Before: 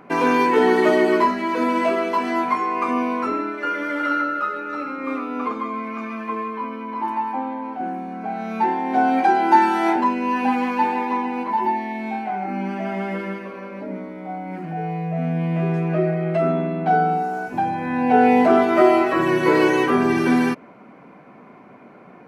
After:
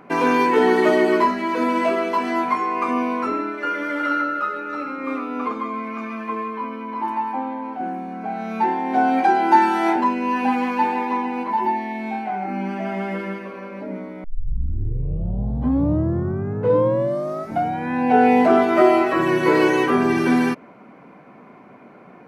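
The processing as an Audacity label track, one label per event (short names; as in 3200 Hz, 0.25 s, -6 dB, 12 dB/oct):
14.240000	14.240000	tape start 3.69 s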